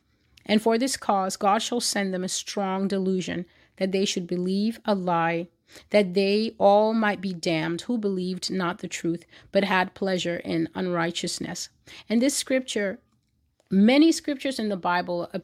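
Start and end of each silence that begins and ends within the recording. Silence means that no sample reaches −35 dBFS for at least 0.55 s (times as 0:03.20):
0:12.95–0:13.71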